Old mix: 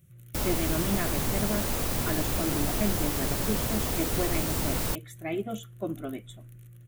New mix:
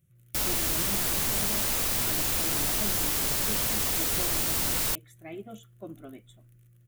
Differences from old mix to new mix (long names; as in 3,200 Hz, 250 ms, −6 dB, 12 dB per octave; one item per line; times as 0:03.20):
speech −9.0 dB
background: add tilt shelving filter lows −6 dB, about 1,100 Hz